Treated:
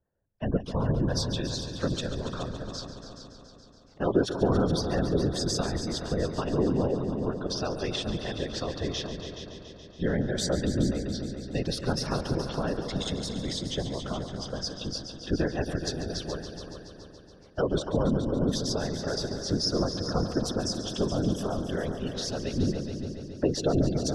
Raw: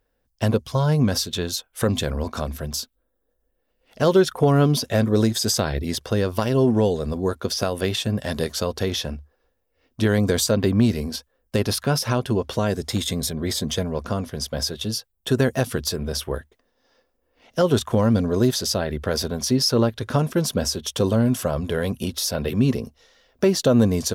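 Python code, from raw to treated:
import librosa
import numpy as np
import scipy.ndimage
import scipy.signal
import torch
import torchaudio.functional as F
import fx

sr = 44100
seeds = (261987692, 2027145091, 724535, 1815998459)

p1 = fx.reverse_delay_fb(x, sr, ms=172, feedback_pct=71, wet_db=-13.5)
p2 = fx.spec_gate(p1, sr, threshold_db=-25, keep='strong')
p3 = fx.env_lowpass(p2, sr, base_hz=1500.0, full_db=-18.5)
p4 = fx.high_shelf(p3, sr, hz=4200.0, db=8.5)
p5 = fx.whisperise(p4, sr, seeds[0])
p6 = fx.air_absorb(p5, sr, metres=100.0)
p7 = p6 + fx.echo_heads(p6, sr, ms=141, heads='all three', feedback_pct=53, wet_db=-13, dry=0)
y = p7 * librosa.db_to_amplitude(-8.0)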